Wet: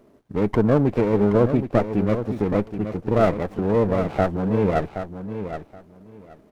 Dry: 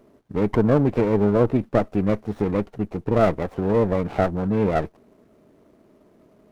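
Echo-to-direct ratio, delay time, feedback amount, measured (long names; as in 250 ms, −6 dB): −9.5 dB, 773 ms, 18%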